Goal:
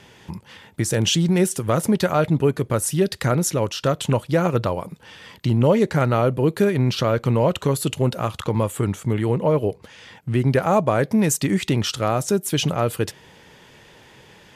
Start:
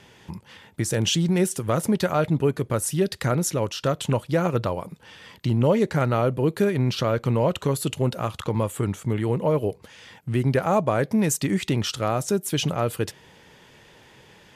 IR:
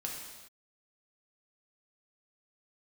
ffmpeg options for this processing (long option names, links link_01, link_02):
-filter_complex "[0:a]asettb=1/sr,asplit=3[link_01][link_02][link_03];[link_01]atrim=end=9.324[link_04];[link_02]atrim=start=9.32:end=10.49,asetpts=PTS-STARTPTS,afade=type=in:duration=0.004:curve=qsin,afade=type=out:start_time=1.166:duration=0.004:curve=qsin,highshelf=frequency=8000:gain=-6[link_05];[link_03]atrim=start=10.486[link_06];[link_04][link_05]acrossfade=duration=0.004:curve1=hsin:curve2=qsin[link_07];[link_07][link_06]acrossfade=duration=0.004:curve1=qsin:curve2=hsin,volume=3dB"